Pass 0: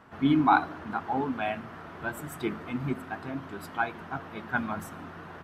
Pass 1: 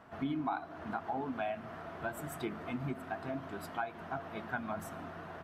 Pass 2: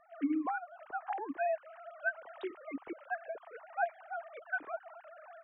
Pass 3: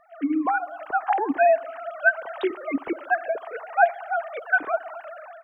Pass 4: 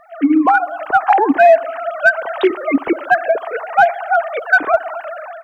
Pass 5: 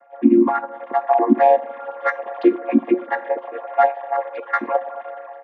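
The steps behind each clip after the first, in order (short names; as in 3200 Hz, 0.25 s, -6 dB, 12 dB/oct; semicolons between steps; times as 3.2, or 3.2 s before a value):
bell 670 Hz +9.5 dB 0.23 oct; compressor 5:1, threshold -30 dBFS, peak gain reduction 14.5 dB; gain -3.5 dB
sine-wave speech; dynamic EQ 1700 Hz, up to +5 dB, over -54 dBFS, Q 3.5
AGC gain up to 9 dB; band-limited delay 65 ms, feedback 70%, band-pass 590 Hz, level -21 dB; gain +6 dB
in parallel at -10 dB: hard clip -18 dBFS, distortion -10 dB; on the sum: maximiser +10 dB; gain -1 dB
chord vocoder minor triad, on A#3; resonator 180 Hz, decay 0.31 s, harmonics all, mix 60%; gain +2.5 dB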